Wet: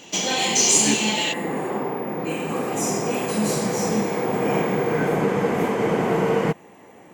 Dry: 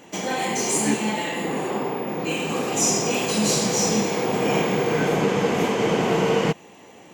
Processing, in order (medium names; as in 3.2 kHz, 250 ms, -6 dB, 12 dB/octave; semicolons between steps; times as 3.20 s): high-order bell 4.3 kHz +10.5 dB, from 1.32 s -8.5 dB